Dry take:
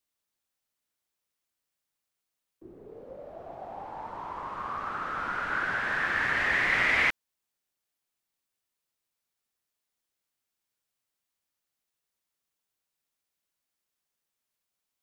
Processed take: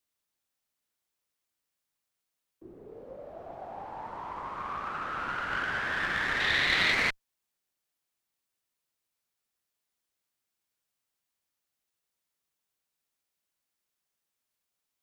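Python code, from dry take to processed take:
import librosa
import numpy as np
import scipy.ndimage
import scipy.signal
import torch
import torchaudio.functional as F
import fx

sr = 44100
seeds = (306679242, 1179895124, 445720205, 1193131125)

y = fx.diode_clip(x, sr, knee_db=-29.0)
y = fx.peak_eq(y, sr, hz=3600.0, db=9.0, octaves=0.76, at=(6.4, 6.93))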